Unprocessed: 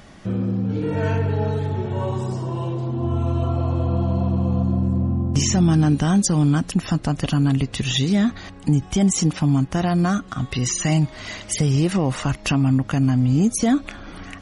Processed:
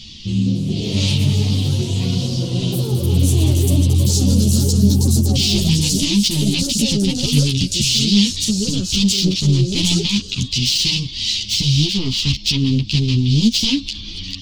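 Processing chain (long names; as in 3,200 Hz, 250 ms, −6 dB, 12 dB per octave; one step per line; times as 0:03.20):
phase distortion by the signal itself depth 0.62 ms
drawn EQ curve 110 Hz 0 dB, 370 Hz −10 dB, 600 Hz −29 dB, 1,000 Hz −20 dB, 1,500 Hz −28 dB, 3,000 Hz +13 dB, 4,800 Hz +15 dB, 11,000 Hz −13 dB
delay with pitch and tempo change per echo 276 ms, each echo +6 semitones, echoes 3, each echo −6 dB
boost into a limiter +12 dB
string-ensemble chorus
level −2 dB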